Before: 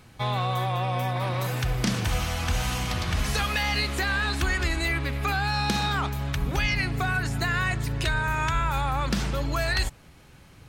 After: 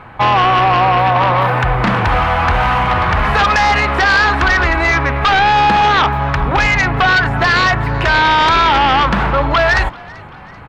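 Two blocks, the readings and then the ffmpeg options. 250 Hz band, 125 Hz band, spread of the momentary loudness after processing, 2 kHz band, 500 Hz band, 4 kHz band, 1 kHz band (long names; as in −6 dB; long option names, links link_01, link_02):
+10.0 dB, +8.5 dB, 4 LU, +15.0 dB, +15.0 dB, +11.0 dB, +18.5 dB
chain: -filter_complex "[0:a]firequalizer=gain_entry='entry(240,0);entry(900,14);entry(5600,-22)':delay=0.05:min_phase=1,aeval=exprs='0.447*sin(PI/2*2.51*val(0)/0.447)':channel_layout=same,asplit=2[link_01][link_02];[link_02]asplit=3[link_03][link_04][link_05];[link_03]adelay=387,afreqshift=49,volume=-23.5dB[link_06];[link_04]adelay=774,afreqshift=98,volume=-29dB[link_07];[link_05]adelay=1161,afreqshift=147,volume=-34.5dB[link_08];[link_06][link_07][link_08]amix=inputs=3:normalize=0[link_09];[link_01][link_09]amix=inputs=2:normalize=0,volume=-1dB"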